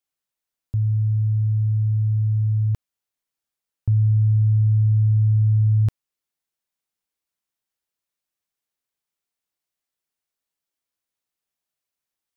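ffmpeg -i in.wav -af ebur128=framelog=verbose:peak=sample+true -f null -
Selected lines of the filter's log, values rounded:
Integrated loudness:
  I:         -20.0 LUFS
  Threshold: -30.2 LUFS
Loudness range:
  LRA:         5.4 LU
  Threshold: -41.7 LUFS
  LRA low:   -25.2 LUFS
  LRA high:  -19.9 LUFS
Sample peak:
  Peak:      -13.5 dBFS
True peak:
  Peak:      -13.5 dBFS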